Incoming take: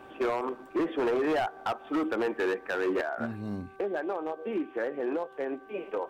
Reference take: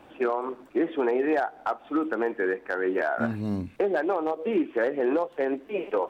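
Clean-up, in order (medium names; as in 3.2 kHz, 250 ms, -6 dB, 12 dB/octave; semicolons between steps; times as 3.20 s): clip repair -24 dBFS; de-hum 387 Hz, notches 4; gain correction +6.5 dB, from 3.01 s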